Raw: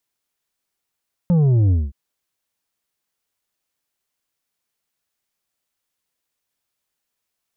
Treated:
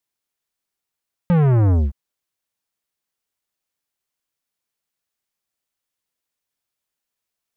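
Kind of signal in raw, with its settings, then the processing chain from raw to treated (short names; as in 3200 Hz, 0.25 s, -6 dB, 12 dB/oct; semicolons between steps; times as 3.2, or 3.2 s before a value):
sub drop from 180 Hz, over 0.62 s, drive 6.5 dB, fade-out 0.21 s, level -13 dB
sample leveller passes 2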